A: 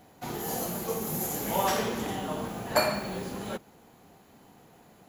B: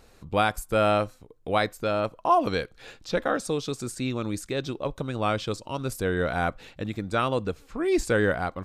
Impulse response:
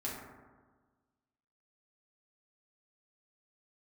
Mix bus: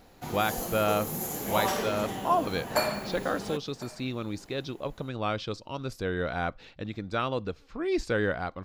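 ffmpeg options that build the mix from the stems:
-filter_complex "[0:a]volume=-2dB,asplit=2[a][b];[b]volume=-20.5dB[c];[1:a]highshelf=f=6.7k:t=q:w=1.5:g=-9.5,volume=-4.5dB[d];[c]aecho=0:1:1053:1[e];[a][d][e]amix=inputs=3:normalize=0"

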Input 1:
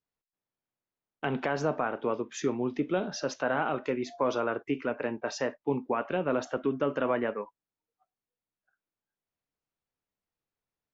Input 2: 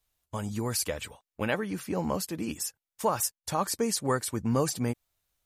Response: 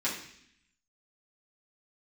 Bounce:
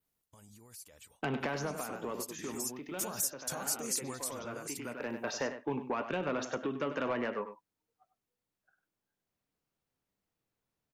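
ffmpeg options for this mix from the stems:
-filter_complex "[0:a]equalizer=f=170:t=o:w=2.9:g=5,acrossover=split=880|2500[a][b][c];[a]acompressor=threshold=-36dB:ratio=4[d];[b]acompressor=threshold=-38dB:ratio=4[e];[c]acompressor=threshold=-46dB:ratio=4[f];[d][e][f]amix=inputs=3:normalize=0,asoftclip=type=tanh:threshold=-27.5dB,volume=2.5dB,asplit=2[g][h];[h]volume=-11dB[i];[1:a]acompressor=threshold=-34dB:ratio=4,alimiter=level_in=8.5dB:limit=-24dB:level=0:latency=1:release=56,volume=-8.5dB,crystalizer=i=2.5:c=0,volume=-2dB,afade=t=in:st=1.36:d=0.34:silence=0.398107,afade=t=in:st=2.55:d=0.48:silence=0.421697,afade=t=out:st=4.12:d=0.2:silence=0.446684,asplit=2[j][k];[k]apad=whole_len=482240[l];[g][l]sidechaincompress=threshold=-50dB:ratio=8:attack=46:release=661[m];[i]aecho=0:1:98:1[n];[m][j][n]amix=inputs=3:normalize=0,adynamicequalizer=threshold=0.00178:dfrequency=6400:dqfactor=2.5:tfrequency=6400:tqfactor=2.5:attack=5:release=100:ratio=0.375:range=3:mode=boostabove:tftype=bell"

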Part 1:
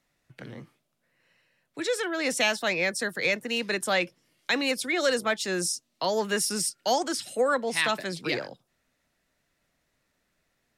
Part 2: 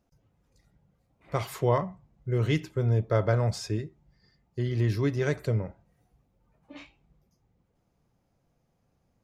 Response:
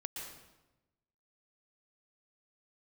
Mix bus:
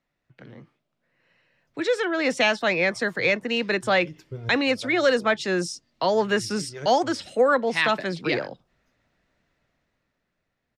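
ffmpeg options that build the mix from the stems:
-filter_complex "[0:a]aemphasis=mode=reproduction:type=50fm,volume=-4dB,asplit=2[a][b];[1:a]highshelf=f=5.4k:g=6,acrossover=split=430[c][d];[c]aeval=exprs='val(0)*(1-0.7/2+0.7/2*cos(2*PI*4.7*n/s))':c=same[e];[d]aeval=exprs='val(0)*(1-0.7/2-0.7/2*cos(2*PI*4.7*n/s))':c=same[f];[e][f]amix=inputs=2:normalize=0,adelay=1550,volume=-14dB[g];[b]apad=whole_len=475667[h];[g][h]sidechaincompress=threshold=-43dB:ratio=8:attack=5.7:release=154[i];[a][i]amix=inputs=2:normalize=0,equalizer=f=11k:t=o:w=0.82:g=-8.5,dynaudnorm=f=130:g=17:m=9dB"

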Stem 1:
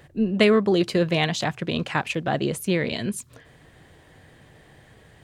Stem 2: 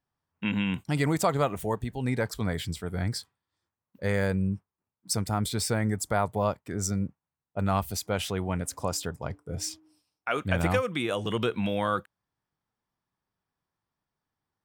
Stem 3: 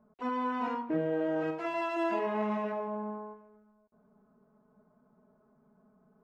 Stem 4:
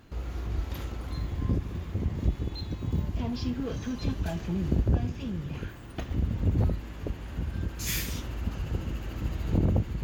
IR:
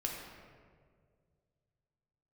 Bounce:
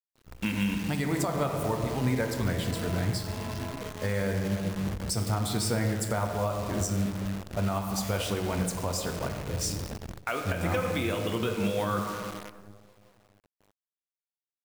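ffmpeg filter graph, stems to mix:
-filter_complex "[1:a]volume=1dB,asplit=2[a][b];[b]volume=-3.5dB[c];[2:a]adelay=900,volume=-5dB,asplit=2[d][e];[e]volume=-7.5dB[f];[3:a]adelay=150,volume=-5dB[g];[a][d][g]amix=inputs=3:normalize=0,flanger=delay=4.1:depth=7.4:regen=47:speed=1.4:shape=sinusoidal,acompressor=threshold=-35dB:ratio=2,volume=0dB[h];[4:a]atrim=start_sample=2205[i];[c][i]afir=irnorm=-1:irlink=0[j];[f]aecho=0:1:720:1[k];[h][j][k]amix=inputs=3:normalize=0,acrusher=bits=7:dc=4:mix=0:aa=0.000001,alimiter=limit=-18dB:level=0:latency=1:release=339"

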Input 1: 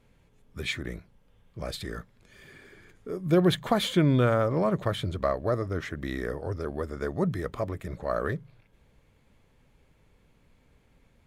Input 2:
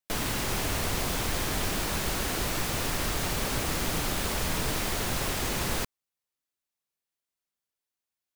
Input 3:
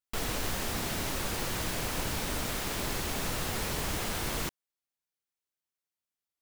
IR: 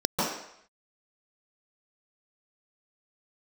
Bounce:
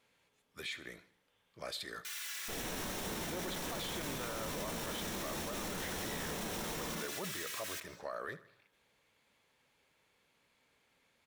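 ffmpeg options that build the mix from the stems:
-filter_complex "[0:a]highpass=f=1.1k:p=1,equalizer=f=4.1k:w=1.5:g=2.5,alimiter=level_in=0.5dB:limit=-24dB:level=0:latency=1:release=303,volume=-0.5dB,volume=-1.5dB,asplit=2[a][b];[b]volume=-18.5dB[c];[1:a]highpass=f=1.5k:w=0.5412,highpass=f=1.5k:w=1.3066,asplit=2[d][e];[e]adelay=2.9,afreqshift=-0.82[f];[d][f]amix=inputs=2:normalize=1,adelay=1950,volume=-6.5dB,asplit=2[g][h];[h]volume=-22dB[i];[2:a]adelay=2350,volume=-5.5dB,asplit=2[j][k];[k]volume=-15dB[l];[3:a]atrim=start_sample=2205[m];[i][l]amix=inputs=2:normalize=0[n];[n][m]afir=irnorm=-1:irlink=0[o];[c]aecho=0:1:77|154|231|308|385|462|539:1|0.49|0.24|0.118|0.0576|0.0282|0.0138[p];[a][g][j][o][p]amix=inputs=5:normalize=0,alimiter=level_in=7dB:limit=-24dB:level=0:latency=1:release=13,volume=-7dB"

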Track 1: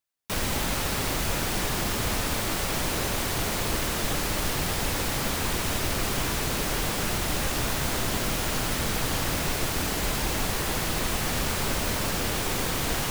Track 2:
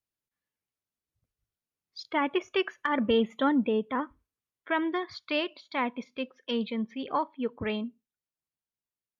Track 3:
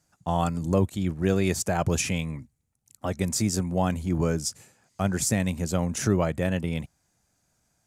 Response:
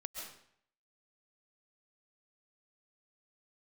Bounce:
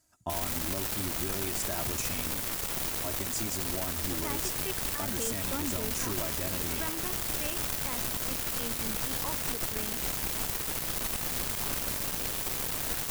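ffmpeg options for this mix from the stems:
-filter_complex "[0:a]acrusher=bits=3:mix=0:aa=0.5,volume=-6.5dB[a];[1:a]adelay=2100,volume=-9dB[b];[2:a]aecho=1:1:3.1:0.65,acompressor=threshold=-27dB:ratio=6,volume=-3.5dB[c];[a][b][c]amix=inputs=3:normalize=0,highshelf=f=8.8k:g=10,alimiter=limit=-20dB:level=0:latency=1:release=81"

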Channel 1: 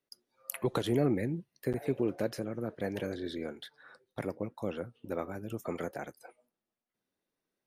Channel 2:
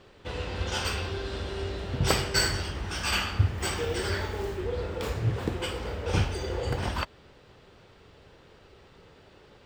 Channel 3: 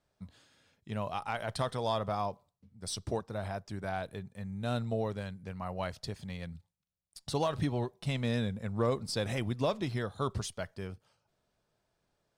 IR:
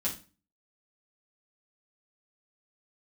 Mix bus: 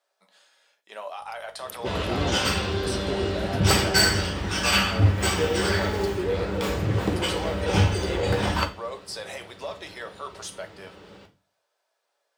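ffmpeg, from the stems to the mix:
-filter_complex "[0:a]aeval=exprs='val(0)+0.00141*(sin(2*PI*50*n/s)+sin(2*PI*2*50*n/s)/2+sin(2*PI*3*50*n/s)/3+sin(2*PI*4*50*n/s)/4+sin(2*PI*5*50*n/s)/5)':c=same,adelay=1200,volume=-3dB[a];[1:a]volume=19.5dB,asoftclip=hard,volume=-19.5dB,adelay=1600,volume=1.5dB,asplit=2[b][c];[c]volume=-3.5dB[d];[2:a]highpass=f=510:w=0.5412,highpass=f=510:w=1.3066,alimiter=level_in=7dB:limit=-24dB:level=0:latency=1:release=17,volume=-7dB,volume=1dB,asplit=2[e][f];[f]volume=-6dB[g];[3:a]atrim=start_sample=2205[h];[d][g]amix=inputs=2:normalize=0[i];[i][h]afir=irnorm=-1:irlink=0[j];[a][b][e][j]amix=inputs=4:normalize=0,highpass=78"

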